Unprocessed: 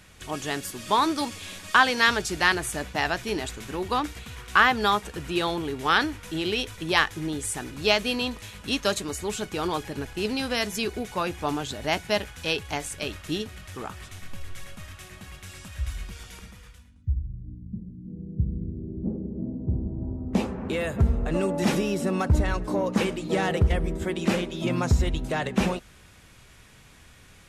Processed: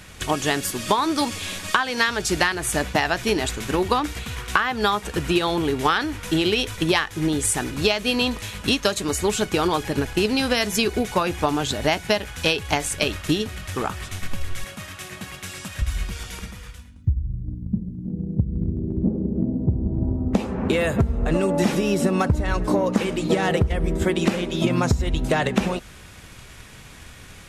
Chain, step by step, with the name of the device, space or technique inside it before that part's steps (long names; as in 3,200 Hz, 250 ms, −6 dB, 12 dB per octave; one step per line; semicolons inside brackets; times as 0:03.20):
drum-bus smash (transient designer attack +5 dB, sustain 0 dB; downward compressor 16 to 1, threshold −24 dBFS, peak gain reduction 15.5 dB; soft clipping −11 dBFS, distortion −29 dB)
0:14.64–0:15.82: high-pass filter 130 Hz 12 dB per octave
level +8.5 dB